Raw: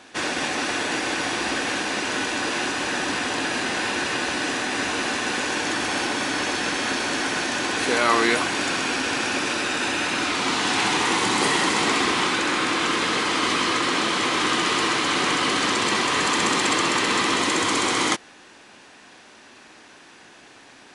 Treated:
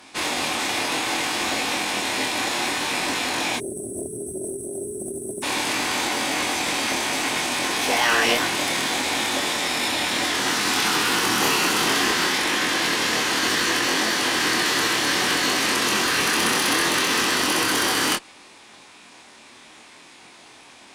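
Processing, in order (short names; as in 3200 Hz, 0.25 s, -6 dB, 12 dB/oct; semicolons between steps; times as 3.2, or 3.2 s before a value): spectral delete 3.57–5.43, 410–5500 Hz; chorus 0.64 Hz, depth 3.9 ms; tube stage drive 14 dB, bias 0.25; formant shift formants +6 st; gain +4.5 dB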